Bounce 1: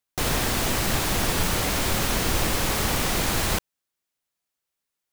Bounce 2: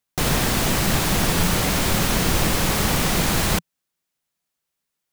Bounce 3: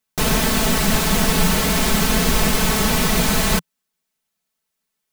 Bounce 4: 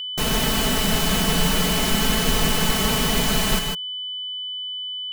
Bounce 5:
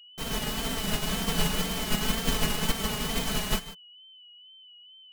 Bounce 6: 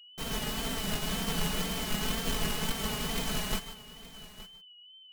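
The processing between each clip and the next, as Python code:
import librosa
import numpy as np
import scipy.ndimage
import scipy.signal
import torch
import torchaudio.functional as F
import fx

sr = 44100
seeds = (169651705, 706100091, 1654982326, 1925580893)

y1 = fx.peak_eq(x, sr, hz=170.0, db=6.5, octaves=0.66)
y1 = y1 * 10.0 ** (3.0 / 20.0)
y2 = y1 + 0.86 * np.pad(y1, (int(4.6 * sr / 1000.0), 0))[:len(y1)]
y3 = fx.echo_multitap(y2, sr, ms=(151, 158), db=(-6.5, -10.0))
y3 = y3 + 10.0 ** (-23.0 / 20.0) * np.sin(2.0 * np.pi * 3000.0 * np.arange(len(y3)) / sr)
y3 = y3 * 10.0 ** (-4.5 / 20.0)
y4 = fx.wow_flutter(y3, sr, seeds[0], rate_hz=2.1, depth_cents=55.0)
y4 = fx.upward_expand(y4, sr, threshold_db=-28.0, expansion=2.5)
y4 = y4 * 10.0 ** (-3.5 / 20.0)
y5 = 10.0 ** (-21.0 / 20.0) * np.tanh(y4 / 10.0 ** (-21.0 / 20.0))
y5 = y5 + 10.0 ** (-17.0 / 20.0) * np.pad(y5, (int(870 * sr / 1000.0), 0))[:len(y5)]
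y5 = y5 * 10.0 ** (-2.0 / 20.0)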